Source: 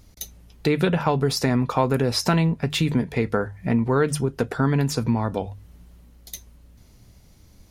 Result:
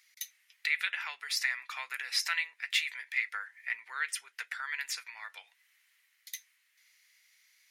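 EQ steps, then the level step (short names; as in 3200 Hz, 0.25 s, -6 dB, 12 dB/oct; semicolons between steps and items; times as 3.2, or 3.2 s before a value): ladder high-pass 1800 Hz, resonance 65%; +4.5 dB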